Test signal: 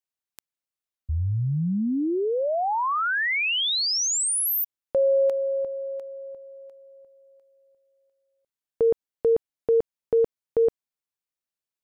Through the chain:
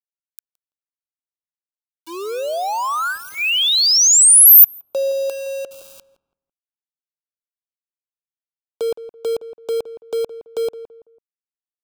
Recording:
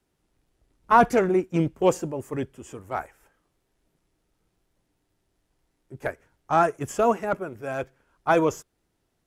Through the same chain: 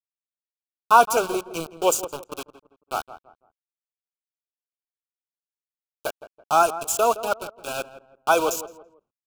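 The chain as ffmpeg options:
-filter_complex "[0:a]highpass=f=260:p=1,agate=range=-12dB:threshold=-47dB:ratio=16:release=77:detection=peak,aemphasis=mode=production:type=75kf,acrossover=split=390[a][b];[a]acompressor=threshold=-40dB:ratio=4:attack=0.56:release=402:knee=1:detection=peak[c];[c][b]amix=inputs=2:normalize=0,aeval=exprs='val(0)*gte(abs(val(0)),0.0355)':c=same,asuperstop=centerf=1900:order=8:qfactor=2.3,asplit=2[d][e];[e]adelay=166,lowpass=f=1.3k:p=1,volume=-13dB,asplit=2[f][g];[g]adelay=166,lowpass=f=1.3k:p=1,volume=0.34,asplit=2[h][i];[i]adelay=166,lowpass=f=1.3k:p=1,volume=0.34[j];[f][h][j]amix=inputs=3:normalize=0[k];[d][k]amix=inputs=2:normalize=0,volume=2.5dB"

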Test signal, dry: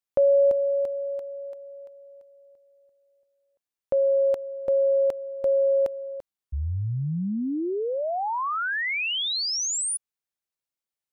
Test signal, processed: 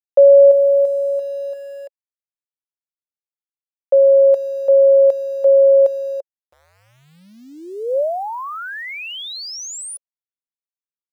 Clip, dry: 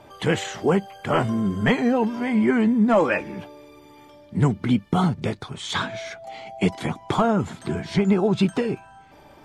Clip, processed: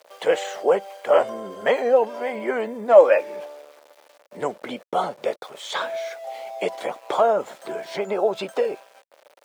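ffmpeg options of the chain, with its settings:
-af "aeval=exprs='val(0)*gte(abs(val(0)),0.0075)':c=same,highpass=f=550:t=q:w=4.9,volume=-3dB"

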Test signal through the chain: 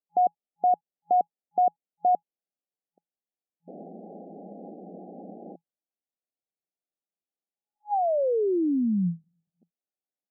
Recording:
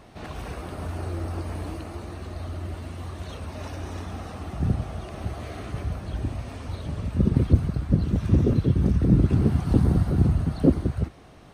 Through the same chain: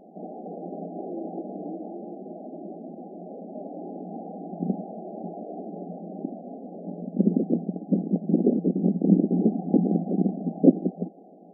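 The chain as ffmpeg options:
-af "afftfilt=real='re*between(b*sr/4096,170,830)':imag='im*between(b*sr/4096,170,830)':win_size=4096:overlap=0.75,volume=3dB"

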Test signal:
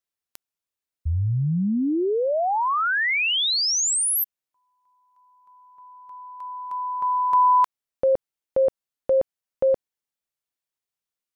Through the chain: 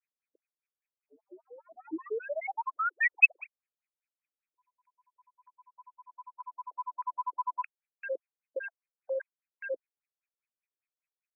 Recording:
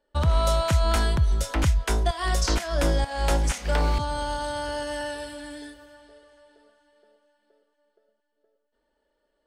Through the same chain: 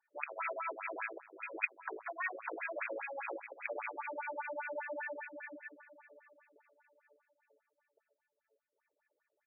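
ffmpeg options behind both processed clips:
-af "tremolo=f=15:d=0.37,aresample=8000,asoftclip=type=tanh:threshold=-25.5dB,aresample=44100,lowpass=f=2.5k:t=q:w=12,afftfilt=real='re*between(b*sr/1024,390*pow(1900/390,0.5+0.5*sin(2*PI*5*pts/sr))/1.41,390*pow(1900/390,0.5+0.5*sin(2*PI*5*pts/sr))*1.41)':imag='im*between(b*sr/1024,390*pow(1900/390,0.5+0.5*sin(2*PI*5*pts/sr))/1.41,390*pow(1900/390,0.5+0.5*sin(2*PI*5*pts/sr))*1.41)':win_size=1024:overlap=0.75,volume=-3dB"

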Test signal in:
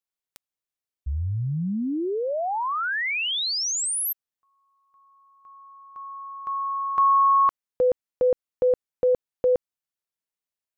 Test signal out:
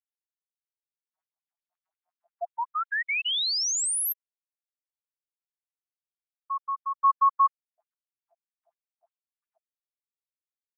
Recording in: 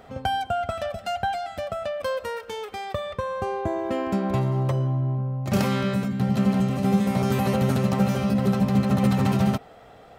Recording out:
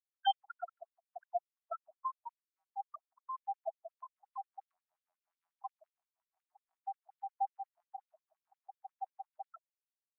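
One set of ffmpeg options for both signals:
-af "afftfilt=real='re*gte(hypot(re,im),0.2)':imag='im*gte(hypot(re,im),0.2)':win_size=1024:overlap=0.75,afftfilt=real='re*gte(b*sr/1024,640*pow(3600/640,0.5+0.5*sin(2*PI*5.6*pts/sr)))':imag='im*gte(b*sr/1024,640*pow(3600/640,0.5+0.5*sin(2*PI*5.6*pts/sr)))':win_size=1024:overlap=0.75"

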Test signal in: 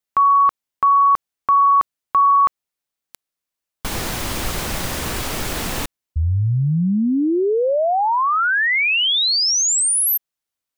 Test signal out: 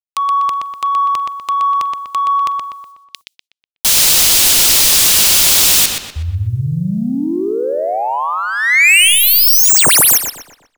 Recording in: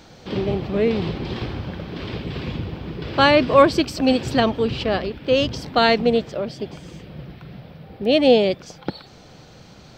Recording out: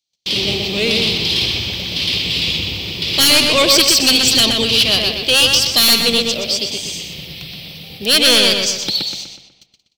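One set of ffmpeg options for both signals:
-filter_complex "[0:a]agate=range=-50dB:threshold=-39dB:ratio=16:release=286:detection=rms,aexciter=amount=10.3:drive=8.7:freq=2.4k,acontrast=44,asplit=2[a][b];[b]adelay=123,lowpass=f=4.1k:p=1,volume=-3dB,asplit=2[c][d];[d]adelay=123,lowpass=f=4.1k:p=1,volume=0.46,asplit=2[e][f];[f]adelay=123,lowpass=f=4.1k:p=1,volume=0.46,asplit=2[g][h];[h]adelay=123,lowpass=f=4.1k:p=1,volume=0.46,asplit=2[i][j];[j]adelay=123,lowpass=f=4.1k:p=1,volume=0.46,asplit=2[k][l];[l]adelay=123,lowpass=f=4.1k:p=1,volume=0.46[m];[c][e][g][i][k][m]amix=inputs=6:normalize=0[n];[a][n]amix=inputs=2:normalize=0,volume=-7dB"

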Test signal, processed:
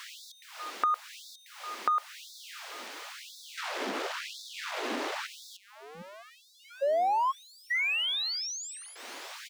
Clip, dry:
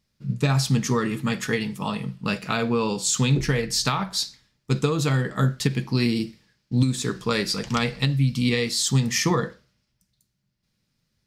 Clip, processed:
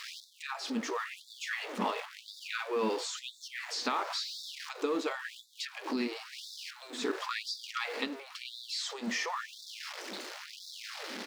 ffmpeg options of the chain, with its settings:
-filter_complex "[0:a]aeval=exprs='val(0)+0.5*0.0447*sgn(val(0))':c=same,asplit=2[a][b];[b]aecho=0:1:280|560|840|1120:0.0631|0.0372|0.022|0.013[c];[a][c]amix=inputs=2:normalize=0,acompressor=threshold=-25dB:ratio=6,highshelf=f=4.1k:g=-11.5,acrossover=split=6700[d][e];[e]acompressor=threshold=-57dB:ratio=4:attack=1:release=60[f];[d][f]amix=inputs=2:normalize=0,afftfilt=real='re*gte(b*sr/1024,210*pow(3500/210,0.5+0.5*sin(2*PI*0.96*pts/sr)))':imag='im*gte(b*sr/1024,210*pow(3500/210,0.5+0.5*sin(2*PI*0.96*pts/sr)))':win_size=1024:overlap=0.75"

